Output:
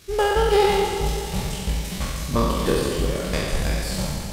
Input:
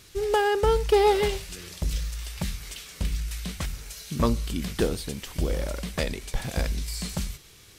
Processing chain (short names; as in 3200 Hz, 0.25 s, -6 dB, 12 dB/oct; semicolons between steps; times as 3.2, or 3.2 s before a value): spectral trails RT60 2.97 s; narrowing echo 0.181 s, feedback 48%, band-pass 380 Hz, level -23 dB; tempo 1.8×; Schroeder reverb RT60 3.2 s, combs from 31 ms, DRR 6.5 dB